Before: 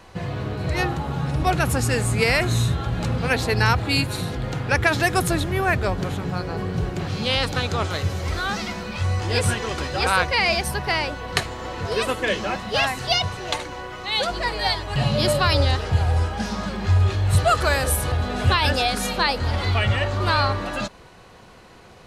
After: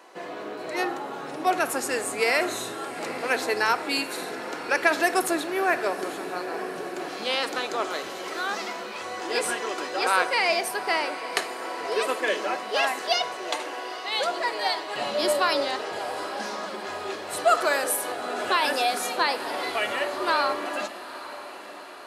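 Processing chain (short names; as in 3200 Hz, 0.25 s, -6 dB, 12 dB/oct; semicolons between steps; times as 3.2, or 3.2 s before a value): HPF 310 Hz 24 dB/oct; bell 3700 Hz -4 dB 1.5 oct; diffused feedback echo 0.861 s, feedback 60%, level -14.5 dB; on a send at -11 dB: reverb RT60 0.80 s, pre-delay 3 ms; on the sum: gain -1.5 dB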